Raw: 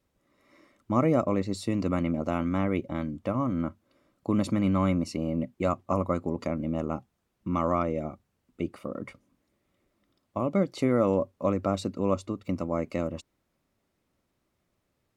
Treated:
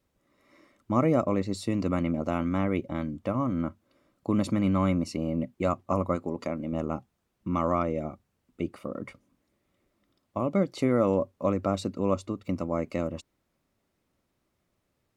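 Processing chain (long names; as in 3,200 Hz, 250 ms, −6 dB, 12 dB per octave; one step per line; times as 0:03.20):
0:06.16–0:06.73: low-shelf EQ 140 Hz −9.5 dB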